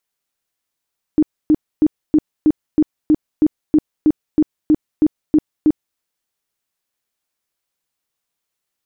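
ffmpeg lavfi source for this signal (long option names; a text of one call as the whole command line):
ffmpeg -f lavfi -i "aevalsrc='0.398*sin(2*PI*306*mod(t,0.32))*lt(mod(t,0.32),14/306)':duration=4.8:sample_rate=44100" out.wav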